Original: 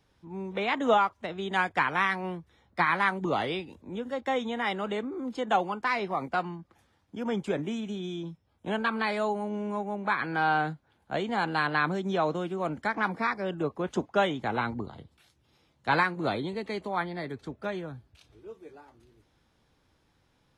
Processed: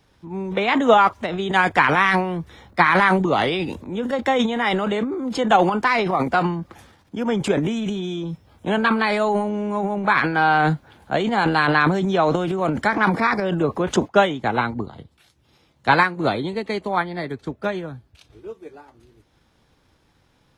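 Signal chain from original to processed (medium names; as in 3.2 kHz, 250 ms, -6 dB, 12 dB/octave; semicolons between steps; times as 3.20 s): transient shaper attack +3 dB, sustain +11 dB, from 14.07 s sustain -3 dB; trim +7.5 dB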